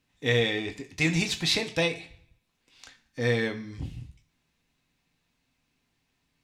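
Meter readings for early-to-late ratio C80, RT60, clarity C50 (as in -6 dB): 17.5 dB, 0.50 s, 14.5 dB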